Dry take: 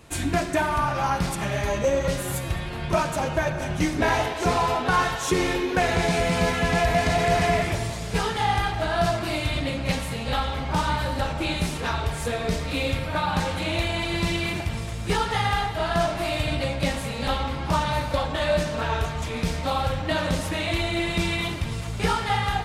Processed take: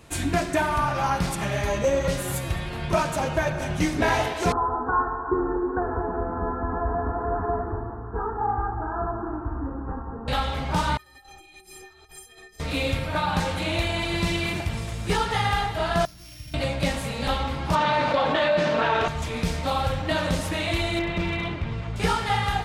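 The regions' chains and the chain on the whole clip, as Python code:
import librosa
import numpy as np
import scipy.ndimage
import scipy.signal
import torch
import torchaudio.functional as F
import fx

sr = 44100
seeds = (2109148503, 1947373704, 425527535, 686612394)

y = fx.chain(x, sr, fx.steep_lowpass(hz=1600.0, slope=48),
    fx.fixed_phaser(hz=590.0, stages=6),
    fx.echo_alternate(ms=182, hz=980.0, feedback_pct=62, wet_db=-9.0), at=(4.52, 10.28))
y = fx.chain(y, sr, fx.high_shelf(hz=6000.0, db=11.0),
    fx.over_compress(threshold_db=-29.0, ratio=-0.5),
    fx.stiff_resonator(f0_hz=370.0, decay_s=0.34, stiffness=0.03), at=(10.97, 12.6))
y = fx.chain(y, sr, fx.sample_sort(block=8),
    fx.tone_stack(knobs='6-0-2'), at=(16.05, 16.54))
y = fx.chain(y, sr, fx.quant_dither(seeds[0], bits=8, dither='none'),
    fx.bandpass_edges(low_hz=220.0, high_hz=3600.0),
    fx.env_flatten(amount_pct=70), at=(17.75, 19.08))
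y = fx.chain(y, sr, fx.lowpass(hz=2600.0, slope=12),
    fx.clip_hard(threshold_db=-20.5), at=(20.99, 21.96))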